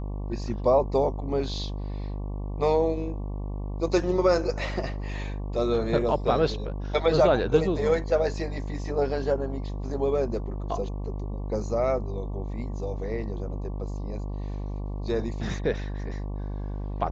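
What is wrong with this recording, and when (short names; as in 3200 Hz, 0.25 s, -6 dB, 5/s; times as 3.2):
buzz 50 Hz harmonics 23 -32 dBFS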